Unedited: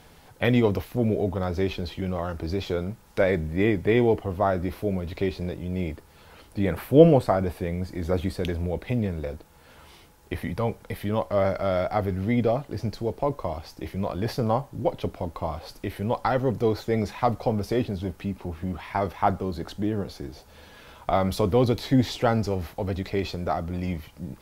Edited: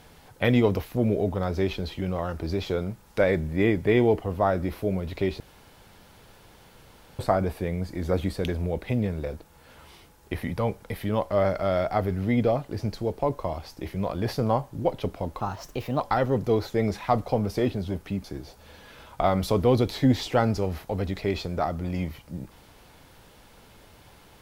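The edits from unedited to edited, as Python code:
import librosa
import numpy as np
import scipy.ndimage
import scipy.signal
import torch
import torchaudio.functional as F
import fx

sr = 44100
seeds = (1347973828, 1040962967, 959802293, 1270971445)

y = fx.edit(x, sr, fx.room_tone_fill(start_s=5.4, length_s=1.79),
    fx.speed_span(start_s=15.4, length_s=0.74, speed=1.23),
    fx.cut(start_s=18.38, length_s=1.75), tone=tone)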